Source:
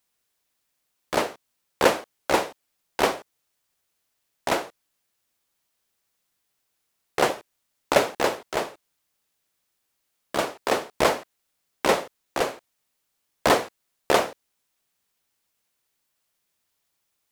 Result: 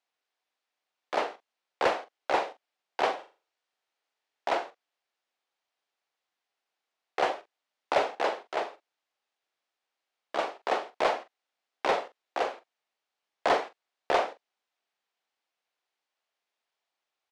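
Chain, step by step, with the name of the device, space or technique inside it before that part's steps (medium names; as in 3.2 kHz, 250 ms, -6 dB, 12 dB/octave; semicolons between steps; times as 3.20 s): intercom (band-pass 390–4000 Hz; peaking EQ 750 Hz +5 dB 0.39 oct; saturation -10.5 dBFS, distortion -17 dB; doubling 43 ms -12 dB); 3.15–4.48 s: flutter echo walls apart 7 m, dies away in 0.33 s; trim -4.5 dB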